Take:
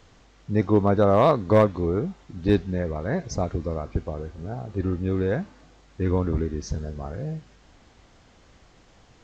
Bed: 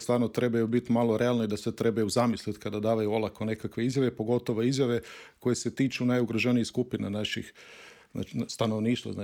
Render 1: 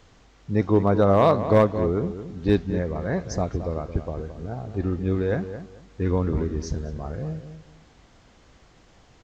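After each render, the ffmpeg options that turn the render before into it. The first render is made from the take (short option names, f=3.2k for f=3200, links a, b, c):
-filter_complex "[0:a]asplit=2[a][b];[b]adelay=220,lowpass=f=1.7k:p=1,volume=-10.5dB,asplit=2[c][d];[d]adelay=220,lowpass=f=1.7k:p=1,volume=0.23,asplit=2[e][f];[f]adelay=220,lowpass=f=1.7k:p=1,volume=0.23[g];[a][c][e][g]amix=inputs=4:normalize=0"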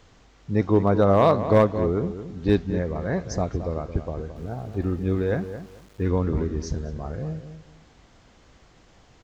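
-filter_complex "[0:a]asplit=3[a][b][c];[a]afade=t=out:st=4.35:d=0.02[d];[b]aeval=exprs='val(0)*gte(abs(val(0)),0.00335)':c=same,afade=t=in:st=4.35:d=0.02,afade=t=out:st=6.08:d=0.02[e];[c]afade=t=in:st=6.08:d=0.02[f];[d][e][f]amix=inputs=3:normalize=0"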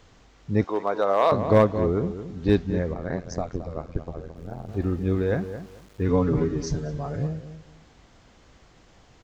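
-filter_complex "[0:a]asettb=1/sr,asplit=3[a][b][c];[a]atrim=end=0.644[d];[b]atrim=start=0.64:end=1.32,asetpts=PTS-STARTPTS,afade=t=in:d=0.004:c=qsin,afade=t=out:st=0.676:d=0.004:c=qsin,highpass=560[e];[c]atrim=start=1.316[f];[d][e]acrossfade=d=0.004:c1=hsin:c2=qsin[g];[g][f]acrossfade=d=0.004:c1=qsin:c2=hsin,asettb=1/sr,asplit=3[h][i][j];[h]atrim=end=2.944[k];[i]atrim=start=2.94:end=4.69,asetpts=PTS-STARTPTS,afade=t=in:d=0.004:c=qsin,afade=t=out:st=1.746:d=0.004:c=qsin,tremolo=f=86:d=0.947[l];[j]atrim=start=4.686[m];[k][l]acrossfade=d=0.004:c1=hsin:c2=qsin[n];[n][m]acrossfade=d=0.004:c1=qsin:c2=hsin,asettb=1/sr,asplit=3[o][p][q];[o]atrim=end=6.084[r];[p]atrim=start=6.08:end=7.27,asetpts=PTS-STARTPTS,afade=t=in:d=0.004:c=qsin,afade=t=out:st=1.186:d=0.004:c=qsin,aecho=1:1:7:0.95,atrim=end_sample=52479[s];[q]atrim=start=7.266[t];[r][s]acrossfade=d=0.004:c1=hsin:c2=qsin[u];[u][t]acrossfade=d=0.004:c1=qsin:c2=hsin"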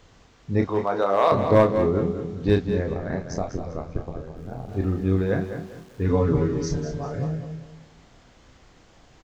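-filter_complex "[0:a]asplit=2[a][b];[b]adelay=31,volume=-6dB[c];[a][c]amix=inputs=2:normalize=0,aecho=1:1:196|392|588:0.299|0.0955|0.0306"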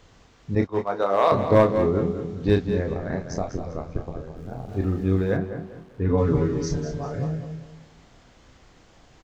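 -filter_complex "[0:a]asettb=1/sr,asplit=3[a][b][c];[a]atrim=end=0.554[d];[b]atrim=start=0.55:end=1.62,asetpts=PTS-STARTPTS,afade=t=in:d=0.004:c=qsin,afade=t=out:st=1.066:d=0.004:c=qsin,agate=range=-33dB:threshold=-22dB:ratio=3:release=100:detection=peak[e];[c]atrim=start=1.616[f];[d][e]acrossfade=d=0.004:c1=hsin:c2=qsin[g];[g][f]acrossfade=d=0.004:c1=qsin:c2=hsin,asplit=3[h][i][j];[h]afade=t=out:st=5.36:d=0.02[k];[i]lowpass=f=1.7k:p=1,afade=t=in:st=5.36:d=0.02,afade=t=out:st=6.17:d=0.02[l];[j]afade=t=in:st=6.17:d=0.02[m];[k][l][m]amix=inputs=3:normalize=0"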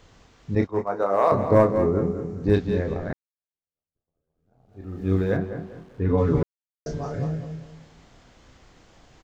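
-filter_complex "[0:a]asettb=1/sr,asplit=3[a][b][c];[a]atrim=end=0.714[d];[b]atrim=start=0.71:end=2.54,asetpts=PTS-STARTPTS,afade=t=in:d=0.004:c=qsin,afade=t=out:st=1.826:d=0.004:c=qsin,equalizer=f=3.4k:t=o:w=0.88:g=-14[e];[c]atrim=start=2.536[f];[d][e]acrossfade=d=0.004:c1=hsin:c2=qsin[g];[g][f]acrossfade=d=0.004:c1=qsin:c2=hsin,asplit=4[h][i][j][k];[h]atrim=end=3.13,asetpts=PTS-STARTPTS,afade=t=out:st=3.126:d=0.004:c=hsin[l];[i]atrim=start=3.13:end=6.43,asetpts=PTS-STARTPTS,afade=t=in:d=1.99:c=exp,afade=t=out:st=3.296:d=0.004:c=hsin[m];[j]atrim=start=6.43:end=6.86,asetpts=PTS-STARTPTS,volume=0[n];[k]atrim=start=6.86,asetpts=PTS-STARTPTS,afade=t=in:d=0.004:c=hsin[o];[l][m][n][o]concat=n=4:v=0:a=1"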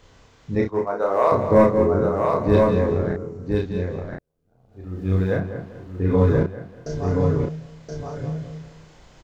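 -filter_complex "[0:a]asplit=2[a][b];[b]adelay=33,volume=-3dB[c];[a][c]amix=inputs=2:normalize=0,aecho=1:1:1024:0.668"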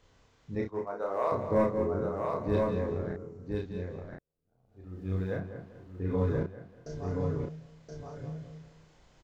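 -af "volume=-11.5dB"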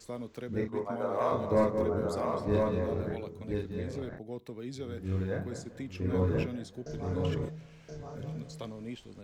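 -filter_complex "[1:a]volume=-14dB[a];[0:a][a]amix=inputs=2:normalize=0"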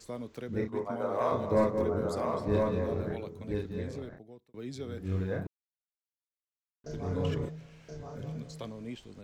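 -filter_complex "[0:a]asplit=4[a][b][c][d];[a]atrim=end=4.54,asetpts=PTS-STARTPTS,afade=t=out:st=3.81:d=0.73[e];[b]atrim=start=4.54:end=5.47,asetpts=PTS-STARTPTS,afade=t=in:d=0.004:c=hsin,afade=t=out:st=0.926:d=0.004:c=hsin[f];[c]atrim=start=5.47:end=6.84,asetpts=PTS-STARTPTS,volume=0[g];[d]atrim=start=6.84,asetpts=PTS-STARTPTS,afade=t=in:d=0.004:c=hsin[h];[e][f][g][h]concat=n=4:v=0:a=1"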